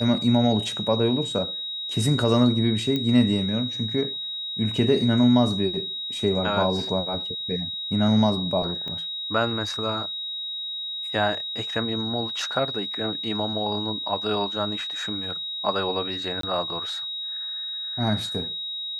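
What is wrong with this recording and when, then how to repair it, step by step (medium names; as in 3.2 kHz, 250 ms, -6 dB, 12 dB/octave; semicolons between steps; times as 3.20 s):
whine 3.8 kHz -29 dBFS
2.96 s: pop -14 dBFS
8.88 s: pop -22 dBFS
16.41–16.43 s: dropout 23 ms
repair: de-click; band-stop 3.8 kHz, Q 30; interpolate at 16.41 s, 23 ms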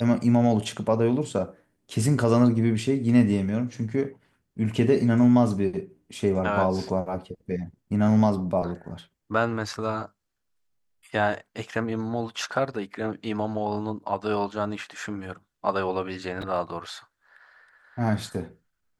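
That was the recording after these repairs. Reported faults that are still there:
8.88 s: pop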